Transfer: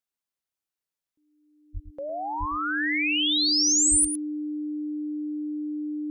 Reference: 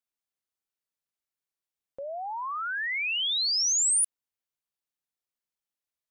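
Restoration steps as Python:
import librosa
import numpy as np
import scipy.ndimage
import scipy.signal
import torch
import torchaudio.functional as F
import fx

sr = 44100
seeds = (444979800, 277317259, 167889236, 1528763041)

y = fx.notch(x, sr, hz=300.0, q=30.0)
y = fx.fix_deplosive(y, sr, at_s=(1.73, 2.39, 3.9))
y = fx.fix_echo_inverse(y, sr, delay_ms=108, level_db=-10.5)
y = fx.gain(y, sr, db=fx.steps((0.0, 0.0), (1.93, -3.0)))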